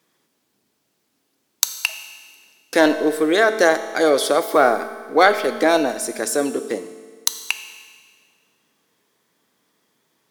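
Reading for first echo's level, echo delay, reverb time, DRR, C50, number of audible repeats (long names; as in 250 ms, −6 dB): no echo audible, no echo audible, 1.7 s, 9.0 dB, 10.5 dB, no echo audible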